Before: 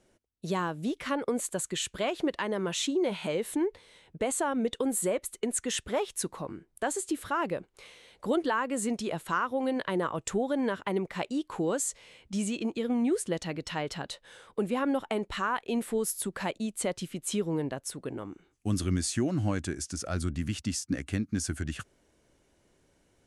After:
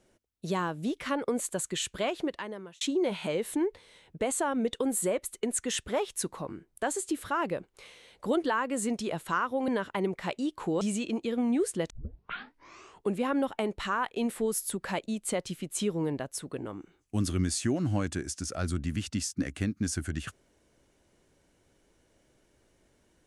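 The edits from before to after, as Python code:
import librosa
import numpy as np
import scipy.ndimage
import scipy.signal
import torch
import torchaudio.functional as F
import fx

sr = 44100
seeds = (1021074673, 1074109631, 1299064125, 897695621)

y = fx.edit(x, sr, fx.fade_out_span(start_s=2.06, length_s=0.75),
    fx.cut(start_s=9.68, length_s=0.92),
    fx.cut(start_s=11.73, length_s=0.6),
    fx.tape_start(start_s=13.42, length_s=1.23), tone=tone)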